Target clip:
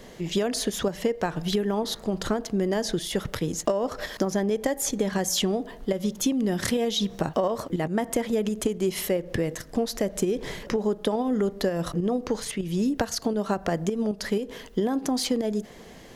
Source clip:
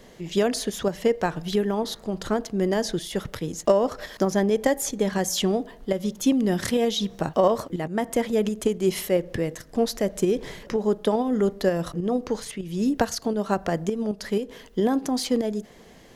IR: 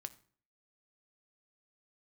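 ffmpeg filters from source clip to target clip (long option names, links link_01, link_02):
-af "acompressor=threshold=-25dB:ratio=6,volume=3.5dB"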